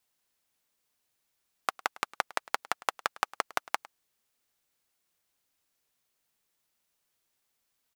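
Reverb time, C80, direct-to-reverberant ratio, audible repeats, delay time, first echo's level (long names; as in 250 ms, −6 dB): no reverb audible, no reverb audible, no reverb audible, 1, 105 ms, −20.5 dB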